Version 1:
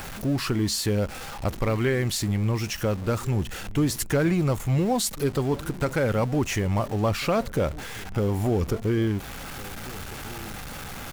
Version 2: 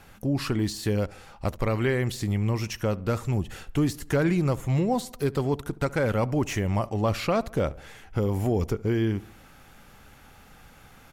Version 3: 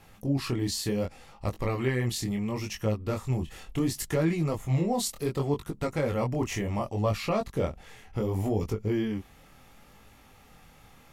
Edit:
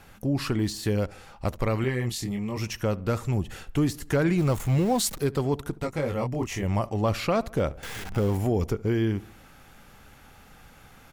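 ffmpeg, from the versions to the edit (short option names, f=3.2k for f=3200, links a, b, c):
-filter_complex "[2:a]asplit=2[a][b];[0:a]asplit=2[c][d];[1:a]asplit=5[e][f][g][h][i];[e]atrim=end=1.842[j];[a]atrim=start=1.838:end=2.572[k];[f]atrim=start=2.568:end=4.382[l];[c]atrim=start=4.378:end=5.182[m];[g]atrim=start=5.178:end=5.802[n];[b]atrim=start=5.798:end=6.632[o];[h]atrim=start=6.628:end=7.832[p];[d]atrim=start=7.828:end=8.372[q];[i]atrim=start=8.368[r];[j][k]acrossfade=d=0.004:c1=hsin:c2=hsin[s];[s][l]acrossfade=d=0.004:c1=hsin:c2=hsin[t];[t][m]acrossfade=d=0.004:c1=hsin:c2=hsin[u];[u][n]acrossfade=d=0.004:c1=hsin:c2=hsin[v];[v][o]acrossfade=d=0.004:c1=hsin:c2=hsin[w];[w][p]acrossfade=d=0.004:c1=hsin:c2=hsin[x];[x][q]acrossfade=d=0.004:c1=hsin:c2=hsin[y];[y][r]acrossfade=d=0.004:c1=hsin:c2=hsin"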